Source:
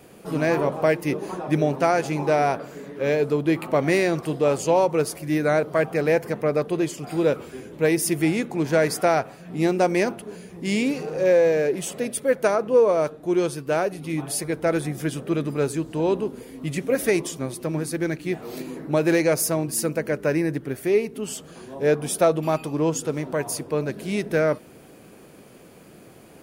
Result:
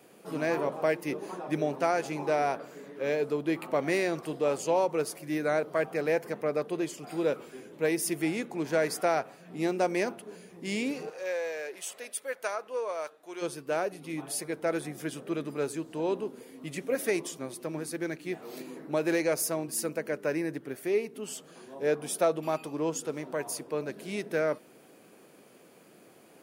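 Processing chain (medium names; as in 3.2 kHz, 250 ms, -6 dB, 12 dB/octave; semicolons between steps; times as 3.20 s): Bessel high-pass 230 Hz, order 2, from 11.09 s 1 kHz, from 13.41 s 250 Hz; trim -6.5 dB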